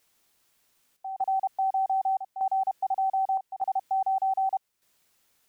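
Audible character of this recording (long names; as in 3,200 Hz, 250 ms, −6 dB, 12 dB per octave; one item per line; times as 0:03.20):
a quantiser's noise floor 12 bits, dither triangular
chopped level 0.83 Hz, depth 65%, duty 80%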